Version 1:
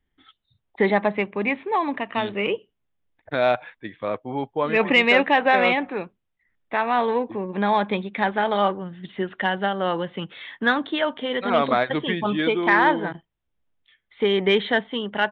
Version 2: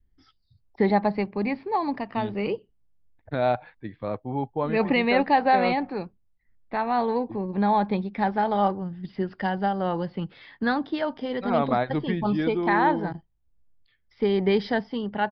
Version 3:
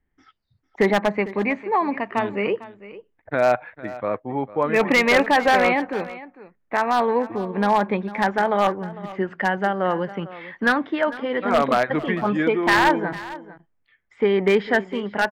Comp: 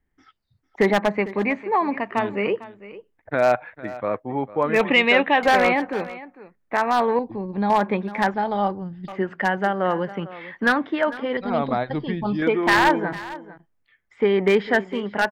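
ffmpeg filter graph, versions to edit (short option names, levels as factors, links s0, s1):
-filter_complex "[1:a]asplit=3[s0][s1][s2];[2:a]asplit=5[s3][s4][s5][s6][s7];[s3]atrim=end=4.812[s8];[0:a]atrim=start=4.808:end=5.432[s9];[s4]atrim=start=5.428:end=7.192[s10];[s0]atrim=start=7.188:end=7.702[s11];[s5]atrim=start=7.698:end=8.342[s12];[s1]atrim=start=8.338:end=9.082[s13];[s6]atrim=start=9.078:end=11.372[s14];[s2]atrim=start=11.368:end=12.422[s15];[s7]atrim=start=12.418[s16];[s8][s9]acrossfade=d=0.004:c1=hsin:c2=hsin[s17];[s17][s10]acrossfade=d=0.004:c1=hsin:c2=hsin[s18];[s18][s11]acrossfade=d=0.004:c1=hsin:c2=hsin[s19];[s19][s12]acrossfade=d=0.004:c1=hsin:c2=hsin[s20];[s20][s13]acrossfade=d=0.004:c1=hsin:c2=hsin[s21];[s21][s14]acrossfade=d=0.004:c1=hsin:c2=hsin[s22];[s22][s15]acrossfade=d=0.004:c1=hsin:c2=hsin[s23];[s23][s16]acrossfade=d=0.004:c1=hsin:c2=hsin"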